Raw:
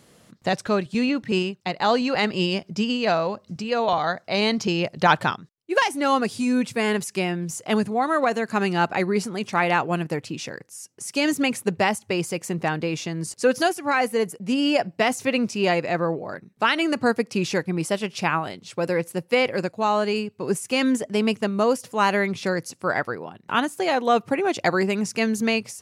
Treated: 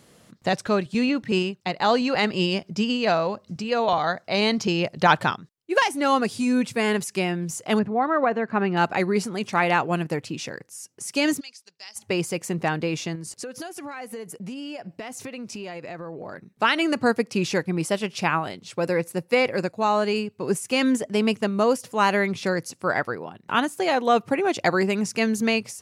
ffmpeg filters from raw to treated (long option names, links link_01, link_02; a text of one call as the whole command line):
ffmpeg -i in.wav -filter_complex "[0:a]asettb=1/sr,asplit=3[link_01][link_02][link_03];[link_01]atrim=end=7.794[link_04];[link_02]atrim=start=7.79:end=8.77,asetpts=PTS-STARTPTS,afade=type=in:duration=0.004:curve=qsin,afade=type=out:start_time=0.976:duration=0.004:curve=qsin,lowpass=2000[link_05];[link_03]atrim=start=8.766[link_06];[link_04][link_05]acrossfade=duration=0.004:curve1=hsin:curve2=qsin[link_07];[link_07][link_06]acrossfade=duration=0.004:curve1=qsin:curve2=hsin,asplit=3[link_08][link_09][link_10];[link_08]afade=type=out:start_time=11.39:duration=0.02[link_11];[link_09]bandpass=frequency=5000:width_type=q:width=5.7,afade=type=in:start_time=11.39:duration=0.02,afade=type=out:start_time=11.95:duration=0.02[link_12];[link_10]afade=type=in:start_time=11.95:duration=0.02[link_13];[link_11][link_12][link_13]amix=inputs=3:normalize=0,asettb=1/sr,asplit=3[link_14][link_15][link_16];[link_14]atrim=end=13.154[link_17];[link_15]atrim=start=13.15:end=16.51,asetpts=PTS-STARTPTS,afade=type=in:duration=0.004:curve=qsin,afade=type=out:start_time=3.356:duration=0.004:curve=qsin,acompressor=threshold=-31dB:ratio=16:attack=3.2:release=140:knee=1:detection=peak[link_18];[link_16]atrim=start=16.506[link_19];[link_17][link_18]acrossfade=duration=0.004:curve1=hsin:curve2=qsin[link_20];[link_20][link_19]acrossfade=duration=0.004:curve1=qsin:curve2=hsin,asettb=1/sr,asplit=3[link_21][link_22][link_23];[link_21]atrim=end=18.864[link_24];[link_22]atrim=start=18.86:end=20.02,asetpts=PTS-STARTPTS,afade=type=in:duration=0.004:curve=qsin,afade=type=out:start_time=1.156:duration=0.004:curve=qsin,bandreject=frequency=3100:width=9.1[link_25];[link_23]atrim=start=20.016[link_26];[link_24][link_25]acrossfade=duration=0.004:curve1=hsin:curve2=qsin[link_27];[link_27][link_26]acrossfade=duration=0.004:curve1=qsin:curve2=hsin" out.wav